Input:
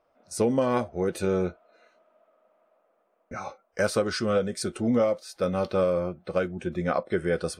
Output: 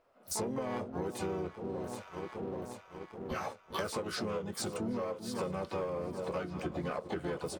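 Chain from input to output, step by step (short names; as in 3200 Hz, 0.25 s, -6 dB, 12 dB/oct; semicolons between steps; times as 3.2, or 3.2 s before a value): harmoniser -3 st -5 dB, +7 st -17 dB, +12 st -10 dB; echo with dull and thin repeats by turns 0.39 s, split 1000 Hz, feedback 77%, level -14 dB; sample leveller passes 1; compressor 8:1, threshold -34 dBFS, peak gain reduction 19 dB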